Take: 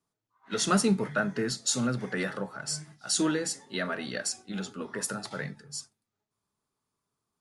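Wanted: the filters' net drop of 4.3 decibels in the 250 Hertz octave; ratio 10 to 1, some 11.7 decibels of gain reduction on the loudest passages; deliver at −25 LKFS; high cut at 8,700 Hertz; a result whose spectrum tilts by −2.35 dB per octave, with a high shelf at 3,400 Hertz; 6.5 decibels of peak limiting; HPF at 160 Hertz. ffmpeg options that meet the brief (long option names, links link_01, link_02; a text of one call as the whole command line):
ffmpeg -i in.wav -af "highpass=160,lowpass=8700,equalizer=frequency=250:width_type=o:gain=-4.5,highshelf=frequency=3400:gain=8,acompressor=threshold=-31dB:ratio=10,volume=12.5dB,alimiter=limit=-13dB:level=0:latency=1" out.wav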